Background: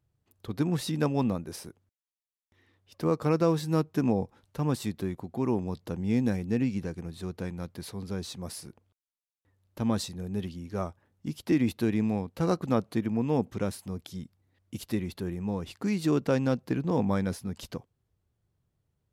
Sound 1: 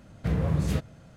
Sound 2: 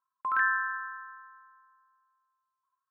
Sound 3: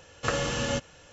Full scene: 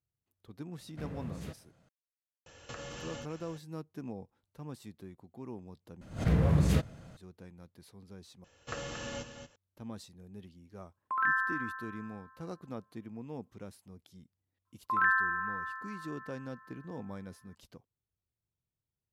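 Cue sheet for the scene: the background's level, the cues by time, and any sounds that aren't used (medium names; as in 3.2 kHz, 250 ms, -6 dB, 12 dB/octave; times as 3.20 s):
background -16 dB
0.73 s: add 1 -13 dB + bass shelf 110 Hz -9 dB
2.46 s: add 3 -3 dB + compression, threshold -38 dBFS
6.01 s: replace with 1 + swell ahead of each attack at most 140 dB/s
8.44 s: replace with 3 -12 dB + delay 230 ms -8.5 dB
10.86 s: add 2 -2.5 dB
14.65 s: add 2 -0.5 dB + echo that smears into a reverb 471 ms, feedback 45%, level -16 dB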